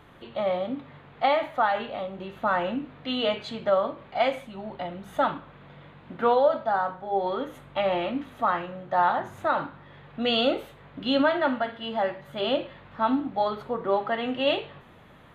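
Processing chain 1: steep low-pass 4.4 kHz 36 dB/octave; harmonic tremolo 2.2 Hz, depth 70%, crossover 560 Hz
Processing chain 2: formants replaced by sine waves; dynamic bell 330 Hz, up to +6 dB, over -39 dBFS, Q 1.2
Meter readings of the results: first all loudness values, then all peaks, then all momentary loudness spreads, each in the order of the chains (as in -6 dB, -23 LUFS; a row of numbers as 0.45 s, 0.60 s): -30.5 LUFS, -25.5 LUFS; -13.5 dBFS, -3.0 dBFS; 11 LU, 14 LU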